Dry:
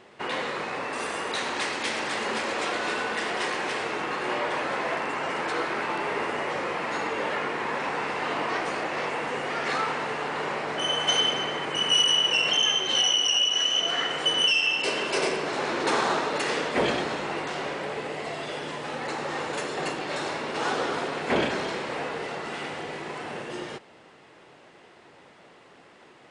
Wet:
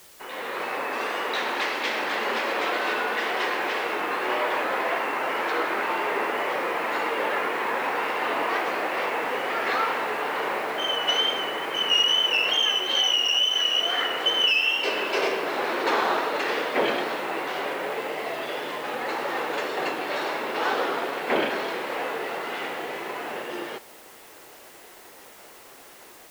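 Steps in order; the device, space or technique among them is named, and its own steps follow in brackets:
dictaphone (band-pass filter 310–3,900 Hz; automatic gain control gain up to 12 dB; tape wow and flutter; white noise bed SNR 24 dB)
level −8.5 dB

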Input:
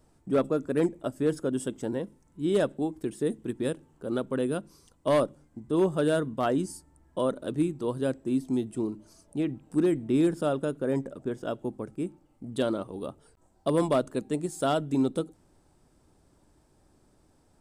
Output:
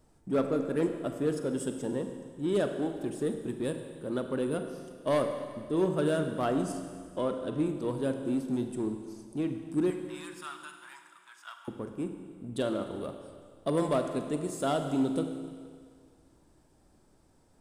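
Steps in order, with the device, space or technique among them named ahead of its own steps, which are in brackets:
parallel distortion (in parallel at −7.5 dB: hard clipping −32.5 dBFS, distortion −4 dB)
0:06.72–0:07.66: on the sum: high-frequency loss of the air 54 metres
0:09.90–0:11.68: Butterworth high-pass 950 Hz 48 dB per octave
four-comb reverb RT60 1.9 s, combs from 33 ms, DRR 6 dB
level −4.5 dB

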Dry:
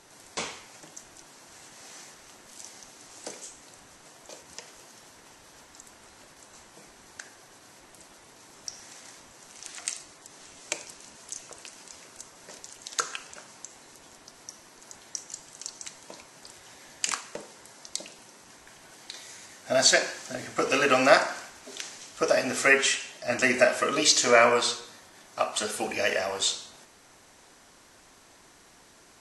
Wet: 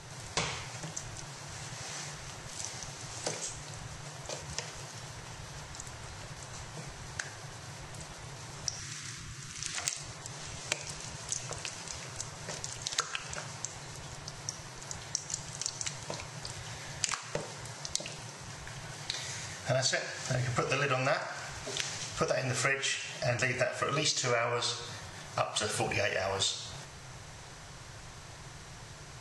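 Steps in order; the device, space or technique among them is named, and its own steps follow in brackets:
jukebox (low-pass filter 7,900 Hz 12 dB per octave; low shelf with overshoot 180 Hz +9 dB, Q 3; downward compressor 6 to 1, threshold −35 dBFS, peak gain reduction 20.5 dB)
0:08.79–0:09.75: flat-topped bell 650 Hz −14 dB 1.3 octaves
level +6.5 dB

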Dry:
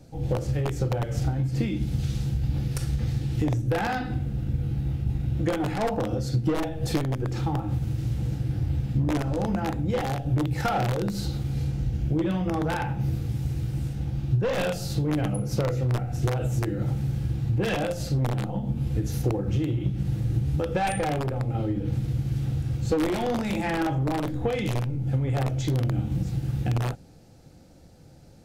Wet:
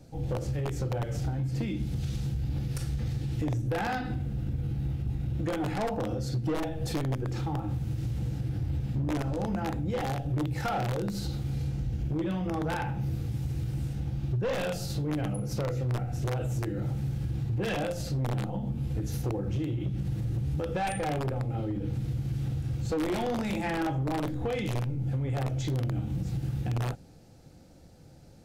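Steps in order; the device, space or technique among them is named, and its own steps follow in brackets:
clipper into limiter (hard clipping −19 dBFS, distortion −24 dB; brickwall limiter −22.5 dBFS, peak gain reduction 3.5 dB)
level −2 dB

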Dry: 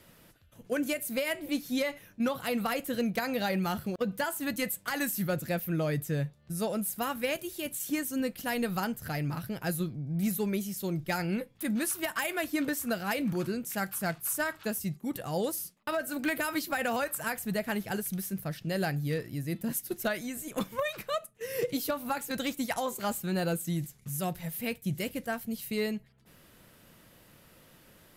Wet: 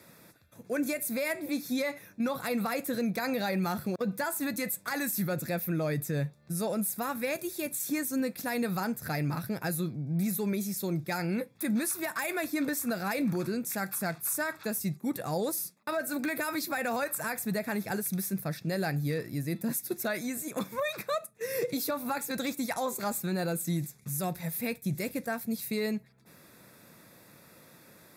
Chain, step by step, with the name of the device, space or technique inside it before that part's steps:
PA system with an anti-feedback notch (high-pass filter 120 Hz 12 dB per octave; Butterworth band-reject 3,000 Hz, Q 4.5; brickwall limiter −25.5 dBFS, peak gain reduction 7 dB)
level +3 dB

